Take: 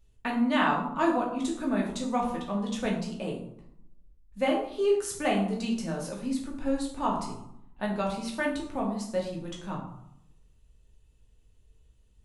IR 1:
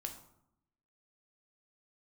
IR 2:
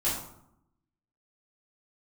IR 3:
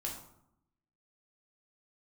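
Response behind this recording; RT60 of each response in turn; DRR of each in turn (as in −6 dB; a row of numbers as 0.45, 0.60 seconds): 3; 0.75, 0.75, 0.75 seconds; 4.0, −10.0, −2.0 decibels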